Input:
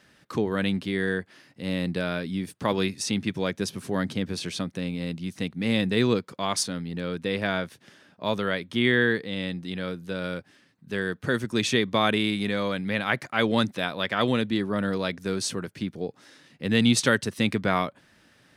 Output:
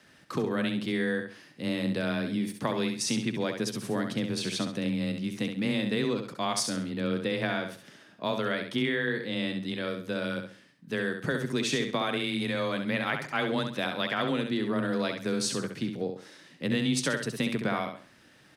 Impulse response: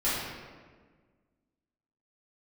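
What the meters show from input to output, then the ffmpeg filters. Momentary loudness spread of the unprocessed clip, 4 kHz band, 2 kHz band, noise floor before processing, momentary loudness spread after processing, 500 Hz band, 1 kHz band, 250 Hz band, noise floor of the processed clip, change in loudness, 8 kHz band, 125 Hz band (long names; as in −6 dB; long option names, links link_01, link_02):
10 LU, −3.5 dB, −4.0 dB, −60 dBFS, 6 LU, −3.5 dB, −4.0 dB, −3.0 dB, −58 dBFS, −3.5 dB, −2.0 dB, −4.5 dB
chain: -af "acompressor=threshold=-25dB:ratio=6,afreqshift=17,aecho=1:1:67|134|201|268:0.473|0.147|0.0455|0.0141"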